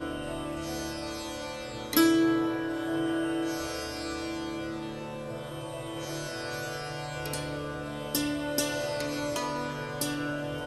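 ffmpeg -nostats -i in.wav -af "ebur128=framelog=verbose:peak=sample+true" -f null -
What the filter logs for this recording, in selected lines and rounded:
Integrated loudness:
  I:         -31.7 LUFS
  Threshold: -41.7 LUFS
Loudness range:
  LRA:         7.1 LU
  Threshold: -51.8 LUFS
  LRA low:   -36.0 LUFS
  LRA high:  -28.8 LUFS
Sample peak:
  Peak:      -10.1 dBFS
True peak:
  Peak:       -9.8 dBFS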